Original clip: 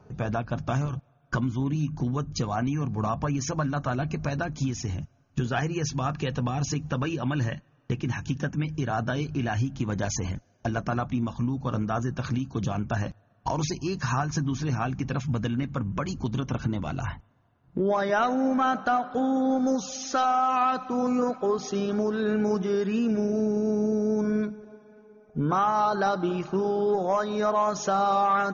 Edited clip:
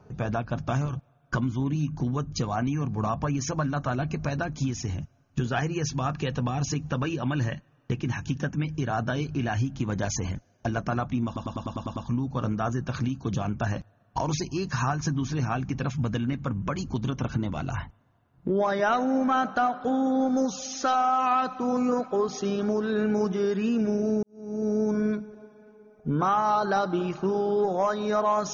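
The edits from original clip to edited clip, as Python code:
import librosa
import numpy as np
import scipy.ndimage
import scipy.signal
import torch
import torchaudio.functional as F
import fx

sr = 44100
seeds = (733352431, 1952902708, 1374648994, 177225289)

y = fx.edit(x, sr, fx.stutter(start_s=11.26, slice_s=0.1, count=8),
    fx.fade_in_span(start_s=23.53, length_s=0.46, curve='qua'), tone=tone)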